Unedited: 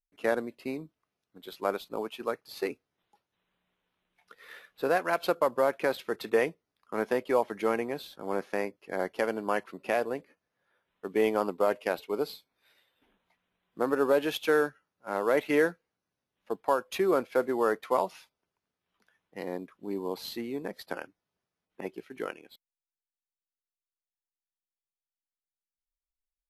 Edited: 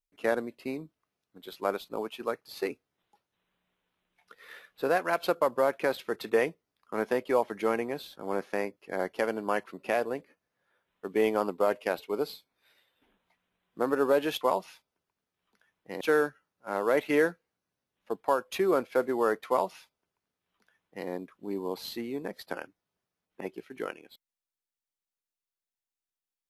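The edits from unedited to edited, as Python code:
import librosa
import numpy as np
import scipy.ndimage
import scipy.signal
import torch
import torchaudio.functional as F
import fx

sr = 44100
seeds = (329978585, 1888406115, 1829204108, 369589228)

y = fx.edit(x, sr, fx.duplicate(start_s=17.88, length_s=1.6, to_s=14.41), tone=tone)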